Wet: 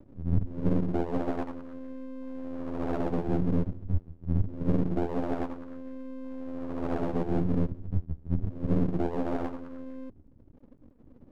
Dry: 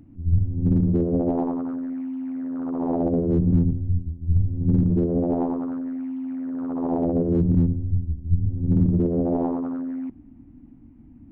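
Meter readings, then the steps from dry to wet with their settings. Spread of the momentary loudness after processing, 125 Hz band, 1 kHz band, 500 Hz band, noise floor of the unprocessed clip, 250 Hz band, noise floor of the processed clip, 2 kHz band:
13 LU, −9.0 dB, −3.0 dB, −6.0 dB, −48 dBFS, −8.5 dB, −56 dBFS, can't be measured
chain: Bessel low-pass filter 1,200 Hz
reverb reduction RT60 1.2 s
half-wave rectification

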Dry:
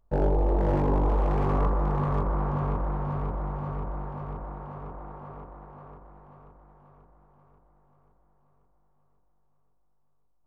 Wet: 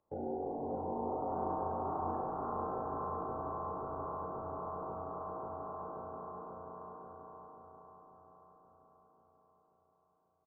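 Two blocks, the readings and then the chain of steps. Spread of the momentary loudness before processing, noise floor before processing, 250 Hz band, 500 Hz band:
18 LU, −66 dBFS, −11.0 dB, −7.0 dB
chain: high-pass filter 260 Hz 12 dB per octave
gate on every frequency bin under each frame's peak −20 dB strong
downward compressor 2.5 to 1, threshold −43 dBFS, peak gain reduction 12.5 dB
frequency shifter −62 Hz
bouncing-ball delay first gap 590 ms, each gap 0.7×, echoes 5
spring reverb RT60 3.5 s, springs 34 ms, chirp 65 ms, DRR −3 dB
linearly interpolated sample-rate reduction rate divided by 2×
level −2 dB

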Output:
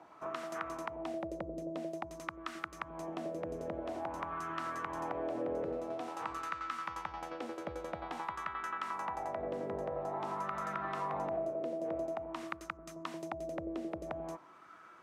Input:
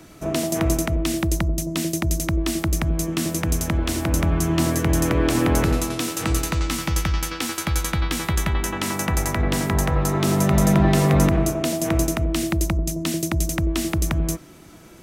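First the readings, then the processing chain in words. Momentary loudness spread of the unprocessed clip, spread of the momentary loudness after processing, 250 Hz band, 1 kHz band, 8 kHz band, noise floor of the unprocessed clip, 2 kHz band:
7 LU, 6 LU, −21.5 dB, −8.5 dB, −31.5 dB, −45 dBFS, −15.5 dB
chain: LFO wah 0.49 Hz 520–1,300 Hz, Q 3.9
downward compressor 2.5 to 1, threshold −41 dBFS, peak gain reduction 10 dB
level +3 dB

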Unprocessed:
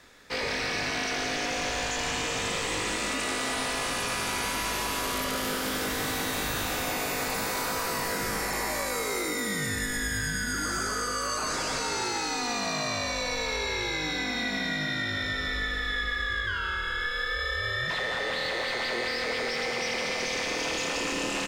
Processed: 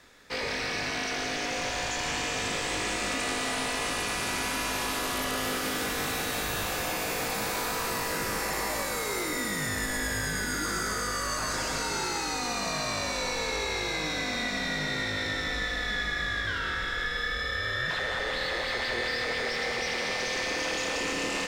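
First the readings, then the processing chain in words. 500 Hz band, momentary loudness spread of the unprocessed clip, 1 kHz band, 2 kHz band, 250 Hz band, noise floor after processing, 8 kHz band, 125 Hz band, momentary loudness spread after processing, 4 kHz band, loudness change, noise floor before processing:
−0.5 dB, 1 LU, −0.5 dB, −0.5 dB, −1.0 dB, −32 dBFS, −0.5 dB, −0.5 dB, 1 LU, −0.5 dB, −0.5 dB, −31 dBFS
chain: feedback delay with all-pass diffusion 1,387 ms, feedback 46%, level −7 dB
level −1.5 dB

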